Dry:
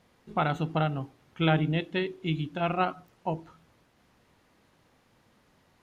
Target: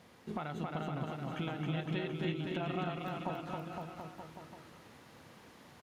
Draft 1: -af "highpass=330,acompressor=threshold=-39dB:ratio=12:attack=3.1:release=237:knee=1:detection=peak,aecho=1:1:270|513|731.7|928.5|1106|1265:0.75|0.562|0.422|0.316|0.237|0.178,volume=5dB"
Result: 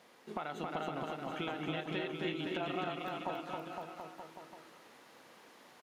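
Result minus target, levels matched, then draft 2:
125 Hz band -7.5 dB
-af "highpass=83,acompressor=threshold=-39dB:ratio=12:attack=3.1:release=237:knee=1:detection=peak,aecho=1:1:270|513|731.7|928.5|1106|1265:0.75|0.562|0.422|0.316|0.237|0.178,volume=5dB"

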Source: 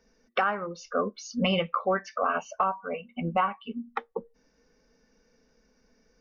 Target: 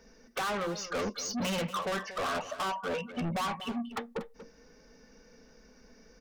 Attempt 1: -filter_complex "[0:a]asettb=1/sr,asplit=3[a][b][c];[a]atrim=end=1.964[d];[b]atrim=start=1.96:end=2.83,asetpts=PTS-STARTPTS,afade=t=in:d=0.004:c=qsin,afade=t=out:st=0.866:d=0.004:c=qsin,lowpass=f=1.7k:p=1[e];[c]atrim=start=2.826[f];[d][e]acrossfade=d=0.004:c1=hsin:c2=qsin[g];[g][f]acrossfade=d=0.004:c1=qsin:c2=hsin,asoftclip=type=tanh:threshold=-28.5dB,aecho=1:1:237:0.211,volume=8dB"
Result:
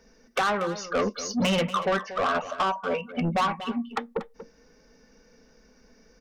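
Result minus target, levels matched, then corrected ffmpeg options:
soft clip: distortion -5 dB
-filter_complex "[0:a]asettb=1/sr,asplit=3[a][b][c];[a]atrim=end=1.964[d];[b]atrim=start=1.96:end=2.83,asetpts=PTS-STARTPTS,afade=t=in:d=0.004:c=qsin,afade=t=out:st=0.866:d=0.004:c=qsin,lowpass=f=1.7k:p=1[e];[c]atrim=start=2.826[f];[d][e]acrossfade=d=0.004:c1=hsin:c2=qsin[g];[g][f]acrossfade=d=0.004:c1=qsin:c2=hsin,asoftclip=type=tanh:threshold=-38.5dB,aecho=1:1:237:0.211,volume=8dB"

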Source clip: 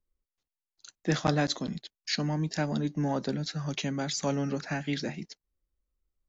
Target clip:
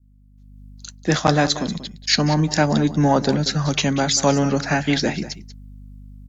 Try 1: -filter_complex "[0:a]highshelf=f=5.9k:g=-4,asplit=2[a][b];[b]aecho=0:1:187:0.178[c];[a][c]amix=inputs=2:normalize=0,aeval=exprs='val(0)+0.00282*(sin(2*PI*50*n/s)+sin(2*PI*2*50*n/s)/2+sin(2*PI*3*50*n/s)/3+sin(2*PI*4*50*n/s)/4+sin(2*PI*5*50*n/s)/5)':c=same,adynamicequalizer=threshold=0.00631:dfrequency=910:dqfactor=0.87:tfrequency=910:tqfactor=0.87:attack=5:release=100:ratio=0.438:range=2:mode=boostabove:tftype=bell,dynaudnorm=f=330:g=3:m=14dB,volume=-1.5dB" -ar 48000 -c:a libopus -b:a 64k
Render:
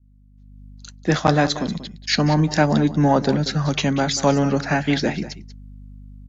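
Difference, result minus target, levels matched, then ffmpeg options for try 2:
8000 Hz band -5.5 dB
-filter_complex "[0:a]highshelf=f=5.9k:g=7,asplit=2[a][b];[b]aecho=0:1:187:0.178[c];[a][c]amix=inputs=2:normalize=0,aeval=exprs='val(0)+0.00282*(sin(2*PI*50*n/s)+sin(2*PI*2*50*n/s)/2+sin(2*PI*3*50*n/s)/3+sin(2*PI*4*50*n/s)/4+sin(2*PI*5*50*n/s)/5)':c=same,adynamicequalizer=threshold=0.00631:dfrequency=910:dqfactor=0.87:tfrequency=910:tqfactor=0.87:attack=5:release=100:ratio=0.438:range=2:mode=boostabove:tftype=bell,dynaudnorm=f=330:g=3:m=14dB,volume=-1.5dB" -ar 48000 -c:a libopus -b:a 64k

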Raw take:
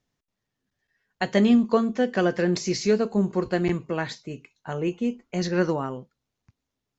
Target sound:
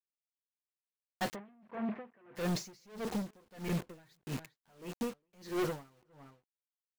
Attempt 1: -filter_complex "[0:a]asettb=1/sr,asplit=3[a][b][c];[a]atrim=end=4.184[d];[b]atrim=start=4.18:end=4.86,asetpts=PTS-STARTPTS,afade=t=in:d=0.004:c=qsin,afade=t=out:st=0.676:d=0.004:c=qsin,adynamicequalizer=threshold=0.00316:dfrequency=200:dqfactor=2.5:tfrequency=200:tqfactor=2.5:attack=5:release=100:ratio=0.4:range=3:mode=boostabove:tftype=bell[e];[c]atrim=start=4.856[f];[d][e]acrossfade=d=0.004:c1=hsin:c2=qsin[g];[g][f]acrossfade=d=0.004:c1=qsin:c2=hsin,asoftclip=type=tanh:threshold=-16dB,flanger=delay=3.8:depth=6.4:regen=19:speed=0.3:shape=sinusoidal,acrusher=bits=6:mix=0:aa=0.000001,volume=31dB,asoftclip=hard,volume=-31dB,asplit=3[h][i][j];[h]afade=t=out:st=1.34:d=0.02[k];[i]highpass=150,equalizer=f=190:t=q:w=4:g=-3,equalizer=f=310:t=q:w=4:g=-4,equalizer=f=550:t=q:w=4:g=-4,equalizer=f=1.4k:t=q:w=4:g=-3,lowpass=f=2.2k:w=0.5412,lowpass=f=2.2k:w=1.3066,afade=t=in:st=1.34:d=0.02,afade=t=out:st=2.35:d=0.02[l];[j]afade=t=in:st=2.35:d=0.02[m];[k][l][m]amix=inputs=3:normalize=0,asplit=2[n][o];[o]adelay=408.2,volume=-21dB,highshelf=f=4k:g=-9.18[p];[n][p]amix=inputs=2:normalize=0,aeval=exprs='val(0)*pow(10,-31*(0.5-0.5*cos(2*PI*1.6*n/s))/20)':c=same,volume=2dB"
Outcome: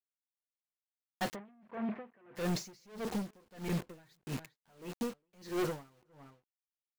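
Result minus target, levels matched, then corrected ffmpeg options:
soft clip: distortion +15 dB
-filter_complex "[0:a]asettb=1/sr,asplit=3[a][b][c];[a]atrim=end=4.184[d];[b]atrim=start=4.18:end=4.86,asetpts=PTS-STARTPTS,afade=t=in:d=0.004:c=qsin,afade=t=out:st=0.676:d=0.004:c=qsin,adynamicequalizer=threshold=0.00316:dfrequency=200:dqfactor=2.5:tfrequency=200:tqfactor=2.5:attack=5:release=100:ratio=0.4:range=3:mode=boostabove:tftype=bell[e];[c]atrim=start=4.856[f];[d][e]acrossfade=d=0.004:c1=hsin:c2=qsin[g];[g][f]acrossfade=d=0.004:c1=qsin:c2=hsin,asoftclip=type=tanh:threshold=-6.5dB,flanger=delay=3.8:depth=6.4:regen=19:speed=0.3:shape=sinusoidal,acrusher=bits=6:mix=0:aa=0.000001,volume=31dB,asoftclip=hard,volume=-31dB,asplit=3[h][i][j];[h]afade=t=out:st=1.34:d=0.02[k];[i]highpass=150,equalizer=f=190:t=q:w=4:g=-3,equalizer=f=310:t=q:w=4:g=-4,equalizer=f=550:t=q:w=4:g=-4,equalizer=f=1.4k:t=q:w=4:g=-3,lowpass=f=2.2k:w=0.5412,lowpass=f=2.2k:w=1.3066,afade=t=in:st=1.34:d=0.02,afade=t=out:st=2.35:d=0.02[l];[j]afade=t=in:st=2.35:d=0.02[m];[k][l][m]amix=inputs=3:normalize=0,asplit=2[n][o];[o]adelay=408.2,volume=-21dB,highshelf=f=4k:g=-9.18[p];[n][p]amix=inputs=2:normalize=0,aeval=exprs='val(0)*pow(10,-31*(0.5-0.5*cos(2*PI*1.6*n/s))/20)':c=same,volume=2dB"

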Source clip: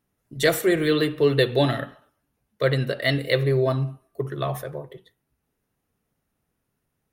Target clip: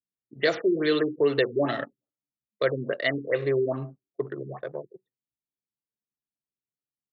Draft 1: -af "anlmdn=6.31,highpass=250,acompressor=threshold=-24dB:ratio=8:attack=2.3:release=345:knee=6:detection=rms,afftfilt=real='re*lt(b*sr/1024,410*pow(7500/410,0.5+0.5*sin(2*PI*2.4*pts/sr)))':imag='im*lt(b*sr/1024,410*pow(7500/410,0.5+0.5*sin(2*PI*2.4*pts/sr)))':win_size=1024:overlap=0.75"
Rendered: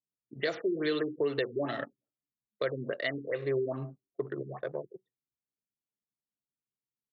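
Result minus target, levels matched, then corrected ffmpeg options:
compressor: peak gain reduction +9 dB
-af "anlmdn=6.31,highpass=250,acompressor=threshold=-13.5dB:ratio=8:attack=2.3:release=345:knee=6:detection=rms,afftfilt=real='re*lt(b*sr/1024,410*pow(7500/410,0.5+0.5*sin(2*PI*2.4*pts/sr)))':imag='im*lt(b*sr/1024,410*pow(7500/410,0.5+0.5*sin(2*PI*2.4*pts/sr)))':win_size=1024:overlap=0.75"

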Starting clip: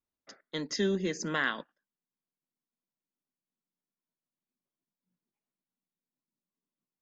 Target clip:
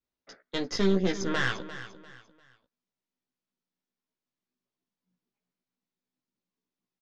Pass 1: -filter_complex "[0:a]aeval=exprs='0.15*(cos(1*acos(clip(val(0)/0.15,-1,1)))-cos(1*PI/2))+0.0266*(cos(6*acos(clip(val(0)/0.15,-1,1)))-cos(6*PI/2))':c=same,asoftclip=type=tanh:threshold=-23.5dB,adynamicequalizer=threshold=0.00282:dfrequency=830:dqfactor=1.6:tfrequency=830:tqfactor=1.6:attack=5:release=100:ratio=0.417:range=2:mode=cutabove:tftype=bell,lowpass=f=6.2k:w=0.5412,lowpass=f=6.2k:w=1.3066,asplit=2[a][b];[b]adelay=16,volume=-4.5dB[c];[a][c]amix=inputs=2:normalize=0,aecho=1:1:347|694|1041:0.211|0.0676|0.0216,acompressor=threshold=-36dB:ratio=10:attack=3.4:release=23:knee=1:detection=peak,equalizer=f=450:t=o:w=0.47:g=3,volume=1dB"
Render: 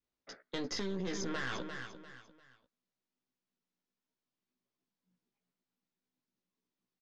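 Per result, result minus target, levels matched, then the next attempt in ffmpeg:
compressor: peak gain reduction +11.5 dB; soft clip: distortion +15 dB
-filter_complex "[0:a]aeval=exprs='0.15*(cos(1*acos(clip(val(0)/0.15,-1,1)))-cos(1*PI/2))+0.0266*(cos(6*acos(clip(val(0)/0.15,-1,1)))-cos(6*PI/2))':c=same,asoftclip=type=tanh:threshold=-23.5dB,adynamicequalizer=threshold=0.00282:dfrequency=830:dqfactor=1.6:tfrequency=830:tqfactor=1.6:attack=5:release=100:ratio=0.417:range=2:mode=cutabove:tftype=bell,lowpass=f=6.2k:w=0.5412,lowpass=f=6.2k:w=1.3066,equalizer=f=450:t=o:w=0.47:g=3,asplit=2[a][b];[b]adelay=16,volume=-4.5dB[c];[a][c]amix=inputs=2:normalize=0,aecho=1:1:347|694|1041:0.211|0.0676|0.0216,volume=1dB"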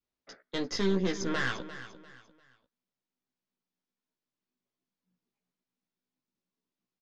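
soft clip: distortion +15 dB
-filter_complex "[0:a]aeval=exprs='0.15*(cos(1*acos(clip(val(0)/0.15,-1,1)))-cos(1*PI/2))+0.0266*(cos(6*acos(clip(val(0)/0.15,-1,1)))-cos(6*PI/2))':c=same,asoftclip=type=tanh:threshold=-14dB,adynamicequalizer=threshold=0.00282:dfrequency=830:dqfactor=1.6:tfrequency=830:tqfactor=1.6:attack=5:release=100:ratio=0.417:range=2:mode=cutabove:tftype=bell,lowpass=f=6.2k:w=0.5412,lowpass=f=6.2k:w=1.3066,equalizer=f=450:t=o:w=0.47:g=3,asplit=2[a][b];[b]adelay=16,volume=-4.5dB[c];[a][c]amix=inputs=2:normalize=0,aecho=1:1:347|694|1041:0.211|0.0676|0.0216,volume=1dB"

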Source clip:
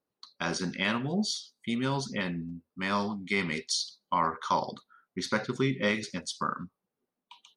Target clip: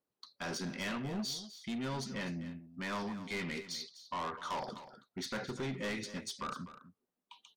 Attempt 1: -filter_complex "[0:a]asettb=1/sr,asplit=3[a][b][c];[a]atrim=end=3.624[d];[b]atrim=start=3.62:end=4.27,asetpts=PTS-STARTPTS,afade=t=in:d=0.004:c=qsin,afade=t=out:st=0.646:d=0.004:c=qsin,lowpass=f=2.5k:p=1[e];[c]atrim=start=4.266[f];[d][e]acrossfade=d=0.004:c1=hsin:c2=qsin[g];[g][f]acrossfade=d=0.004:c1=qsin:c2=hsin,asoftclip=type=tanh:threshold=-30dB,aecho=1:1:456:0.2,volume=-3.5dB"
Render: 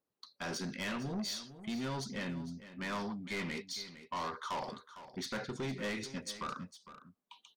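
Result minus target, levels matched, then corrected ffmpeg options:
echo 0.206 s late
-filter_complex "[0:a]asettb=1/sr,asplit=3[a][b][c];[a]atrim=end=3.624[d];[b]atrim=start=3.62:end=4.27,asetpts=PTS-STARTPTS,afade=t=in:d=0.004:c=qsin,afade=t=out:st=0.646:d=0.004:c=qsin,lowpass=f=2.5k:p=1[e];[c]atrim=start=4.266[f];[d][e]acrossfade=d=0.004:c1=hsin:c2=qsin[g];[g][f]acrossfade=d=0.004:c1=qsin:c2=hsin,asoftclip=type=tanh:threshold=-30dB,aecho=1:1:250:0.2,volume=-3.5dB"

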